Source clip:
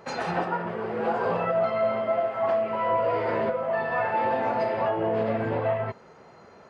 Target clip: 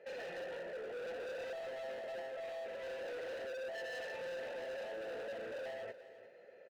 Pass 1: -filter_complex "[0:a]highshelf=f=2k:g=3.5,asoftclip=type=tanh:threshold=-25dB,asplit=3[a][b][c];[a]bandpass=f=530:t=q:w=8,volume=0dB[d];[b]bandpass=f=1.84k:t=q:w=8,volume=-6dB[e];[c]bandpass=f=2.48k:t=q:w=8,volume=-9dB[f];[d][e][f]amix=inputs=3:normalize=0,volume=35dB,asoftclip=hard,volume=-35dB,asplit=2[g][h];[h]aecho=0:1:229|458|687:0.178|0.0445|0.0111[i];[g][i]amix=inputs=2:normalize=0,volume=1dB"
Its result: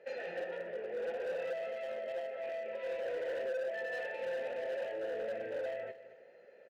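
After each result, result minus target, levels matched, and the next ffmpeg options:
echo 0.122 s early; overloaded stage: distortion -7 dB
-filter_complex "[0:a]highshelf=f=2k:g=3.5,asoftclip=type=tanh:threshold=-25dB,asplit=3[a][b][c];[a]bandpass=f=530:t=q:w=8,volume=0dB[d];[b]bandpass=f=1.84k:t=q:w=8,volume=-6dB[e];[c]bandpass=f=2.48k:t=q:w=8,volume=-9dB[f];[d][e][f]amix=inputs=3:normalize=0,volume=35dB,asoftclip=hard,volume=-35dB,asplit=2[g][h];[h]aecho=0:1:351|702|1053:0.178|0.0445|0.0111[i];[g][i]amix=inputs=2:normalize=0,volume=1dB"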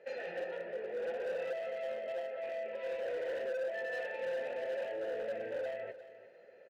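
overloaded stage: distortion -7 dB
-filter_complex "[0:a]highshelf=f=2k:g=3.5,asoftclip=type=tanh:threshold=-25dB,asplit=3[a][b][c];[a]bandpass=f=530:t=q:w=8,volume=0dB[d];[b]bandpass=f=1.84k:t=q:w=8,volume=-6dB[e];[c]bandpass=f=2.48k:t=q:w=8,volume=-9dB[f];[d][e][f]amix=inputs=3:normalize=0,volume=43dB,asoftclip=hard,volume=-43dB,asplit=2[g][h];[h]aecho=0:1:351|702|1053:0.178|0.0445|0.0111[i];[g][i]amix=inputs=2:normalize=0,volume=1dB"

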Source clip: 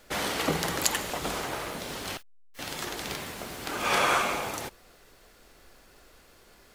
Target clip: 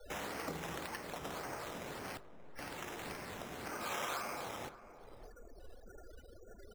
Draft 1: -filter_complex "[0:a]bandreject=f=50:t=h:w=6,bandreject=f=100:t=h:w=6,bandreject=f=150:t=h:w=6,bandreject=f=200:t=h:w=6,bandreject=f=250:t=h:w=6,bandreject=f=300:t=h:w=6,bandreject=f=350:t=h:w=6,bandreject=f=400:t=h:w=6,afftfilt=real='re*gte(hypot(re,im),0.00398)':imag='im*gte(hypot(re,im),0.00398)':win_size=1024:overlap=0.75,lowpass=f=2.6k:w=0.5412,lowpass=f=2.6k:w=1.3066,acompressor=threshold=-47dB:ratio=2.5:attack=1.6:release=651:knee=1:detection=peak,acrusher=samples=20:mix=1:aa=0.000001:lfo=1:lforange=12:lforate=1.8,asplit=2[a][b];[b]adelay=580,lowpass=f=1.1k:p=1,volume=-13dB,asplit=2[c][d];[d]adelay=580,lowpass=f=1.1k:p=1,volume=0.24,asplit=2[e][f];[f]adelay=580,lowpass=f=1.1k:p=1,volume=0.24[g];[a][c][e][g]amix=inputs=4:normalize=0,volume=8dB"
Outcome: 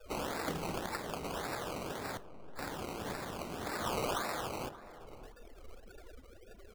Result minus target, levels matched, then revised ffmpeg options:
decimation with a swept rate: distortion +10 dB; compressor: peak gain reduction -4.5 dB
-filter_complex "[0:a]bandreject=f=50:t=h:w=6,bandreject=f=100:t=h:w=6,bandreject=f=150:t=h:w=6,bandreject=f=200:t=h:w=6,bandreject=f=250:t=h:w=6,bandreject=f=300:t=h:w=6,bandreject=f=350:t=h:w=6,bandreject=f=400:t=h:w=6,afftfilt=real='re*gte(hypot(re,im),0.00398)':imag='im*gte(hypot(re,im),0.00398)':win_size=1024:overlap=0.75,lowpass=f=2.6k:w=0.5412,lowpass=f=2.6k:w=1.3066,acompressor=threshold=-54.5dB:ratio=2.5:attack=1.6:release=651:knee=1:detection=peak,acrusher=samples=8:mix=1:aa=0.000001:lfo=1:lforange=4.8:lforate=1.8,asplit=2[a][b];[b]adelay=580,lowpass=f=1.1k:p=1,volume=-13dB,asplit=2[c][d];[d]adelay=580,lowpass=f=1.1k:p=1,volume=0.24,asplit=2[e][f];[f]adelay=580,lowpass=f=1.1k:p=1,volume=0.24[g];[a][c][e][g]amix=inputs=4:normalize=0,volume=8dB"

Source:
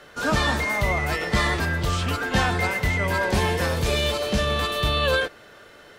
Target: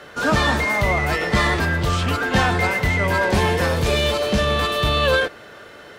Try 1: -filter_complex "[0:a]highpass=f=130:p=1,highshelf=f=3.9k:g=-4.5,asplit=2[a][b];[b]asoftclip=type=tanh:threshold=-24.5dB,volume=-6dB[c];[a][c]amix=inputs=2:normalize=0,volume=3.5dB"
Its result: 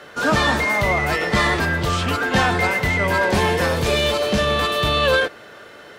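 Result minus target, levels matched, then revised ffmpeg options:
soft clip: distortion -5 dB; 125 Hz band -2.5 dB
-filter_complex "[0:a]highpass=f=51:p=1,highshelf=f=3.9k:g=-4.5,asplit=2[a][b];[b]asoftclip=type=tanh:threshold=-32dB,volume=-6dB[c];[a][c]amix=inputs=2:normalize=0,volume=3.5dB"

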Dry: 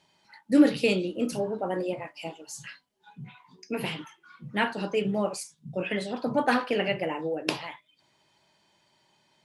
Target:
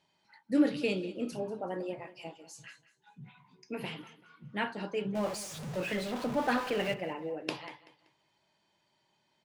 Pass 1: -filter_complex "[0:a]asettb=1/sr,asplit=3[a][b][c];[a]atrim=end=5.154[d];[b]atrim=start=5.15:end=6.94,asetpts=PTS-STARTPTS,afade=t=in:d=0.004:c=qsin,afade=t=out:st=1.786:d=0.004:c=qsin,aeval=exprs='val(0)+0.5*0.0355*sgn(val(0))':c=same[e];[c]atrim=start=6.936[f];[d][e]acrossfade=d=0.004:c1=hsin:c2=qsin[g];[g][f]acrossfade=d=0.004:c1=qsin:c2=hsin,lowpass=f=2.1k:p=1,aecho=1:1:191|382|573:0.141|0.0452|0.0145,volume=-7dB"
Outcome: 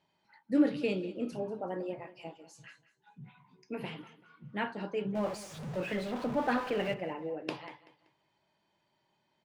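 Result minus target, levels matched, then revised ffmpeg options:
8000 Hz band -7.0 dB
-filter_complex "[0:a]asettb=1/sr,asplit=3[a][b][c];[a]atrim=end=5.154[d];[b]atrim=start=5.15:end=6.94,asetpts=PTS-STARTPTS,afade=t=in:d=0.004:c=qsin,afade=t=out:st=1.786:d=0.004:c=qsin,aeval=exprs='val(0)+0.5*0.0355*sgn(val(0))':c=same[e];[c]atrim=start=6.936[f];[d][e]acrossfade=d=0.004:c1=hsin:c2=qsin[g];[g][f]acrossfade=d=0.004:c1=qsin:c2=hsin,lowpass=f=6.5k:p=1,aecho=1:1:191|382|573:0.141|0.0452|0.0145,volume=-7dB"

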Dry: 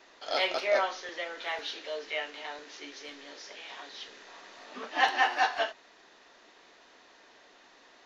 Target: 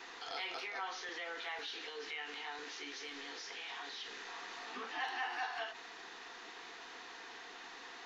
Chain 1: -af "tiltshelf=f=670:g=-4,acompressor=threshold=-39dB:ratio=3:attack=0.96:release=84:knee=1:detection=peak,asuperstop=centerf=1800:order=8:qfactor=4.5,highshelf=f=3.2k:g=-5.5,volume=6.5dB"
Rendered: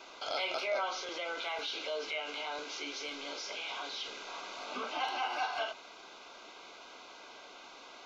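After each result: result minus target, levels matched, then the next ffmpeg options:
compressor: peak gain reduction -6 dB; 500 Hz band +4.0 dB
-af "tiltshelf=f=670:g=-4,acompressor=threshold=-48dB:ratio=3:attack=0.96:release=84:knee=1:detection=peak,asuperstop=centerf=1800:order=8:qfactor=4.5,highshelf=f=3.2k:g=-5.5,volume=6.5dB"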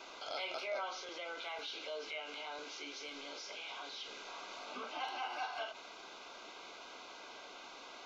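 500 Hz band +5.0 dB
-af "tiltshelf=f=670:g=-4,acompressor=threshold=-48dB:ratio=3:attack=0.96:release=84:knee=1:detection=peak,asuperstop=centerf=590:order=8:qfactor=4.5,highshelf=f=3.2k:g=-5.5,volume=6.5dB"

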